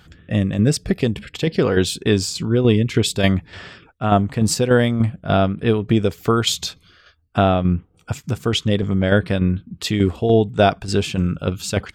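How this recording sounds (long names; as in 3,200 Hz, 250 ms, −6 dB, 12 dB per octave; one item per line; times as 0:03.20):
tremolo saw down 3.4 Hz, depth 55%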